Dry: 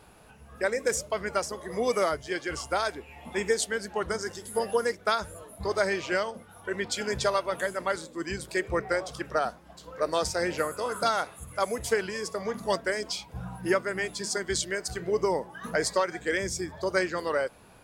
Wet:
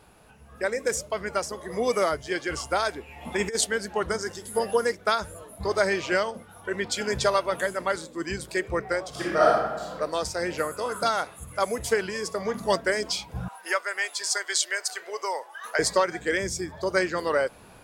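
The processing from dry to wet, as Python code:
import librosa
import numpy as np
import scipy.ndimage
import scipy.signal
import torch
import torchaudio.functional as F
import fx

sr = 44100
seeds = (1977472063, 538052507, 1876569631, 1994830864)

y = fx.over_compress(x, sr, threshold_db=-28.0, ratio=-0.5, at=(3.21, 3.67))
y = fx.reverb_throw(y, sr, start_s=9.09, length_s=0.83, rt60_s=1.2, drr_db=-8.0)
y = fx.bessel_highpass(y, sr, hz=850.0, order=4, at=(13.48, 15.79))
y = fx.rider(y, sr, range_db=10, speed_s=2.0)
y = y * 10.0 ** (1.0 / 20.0)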